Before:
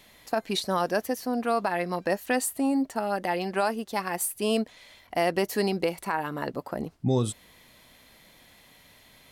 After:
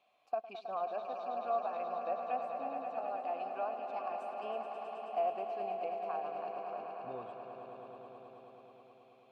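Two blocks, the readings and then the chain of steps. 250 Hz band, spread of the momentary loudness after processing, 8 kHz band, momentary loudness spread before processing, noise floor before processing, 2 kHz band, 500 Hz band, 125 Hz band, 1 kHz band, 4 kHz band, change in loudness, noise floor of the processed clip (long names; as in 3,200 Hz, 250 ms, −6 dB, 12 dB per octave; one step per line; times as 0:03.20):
−24.5 dB, 15 LU, below −40 dB, 7 LU, −57 dBFS, −19.5 dB, −9.5 dB, below −25 dB, −5.5 dB, −23.0 dB, −10.5 dB, −63 dBFS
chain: treble cut that deepens with the level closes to 2,300 Hz, closed at −21 dBFS
formant filter a
echo that builds up and dies away 107 ms, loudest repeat 5, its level −9.5 dB
level −4 dB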